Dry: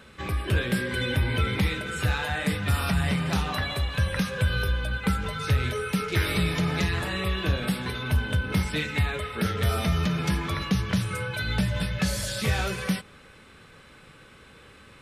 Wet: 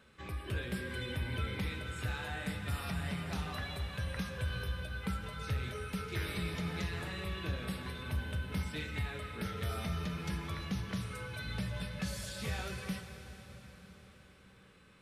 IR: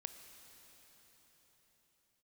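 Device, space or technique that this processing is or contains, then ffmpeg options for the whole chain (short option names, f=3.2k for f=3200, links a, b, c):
cathedral: -filter_complex "[1:a]atrim=start_sample=2205[a];[0:a][a]afir=irnorm=-1:irlink=0,volume=-8dB"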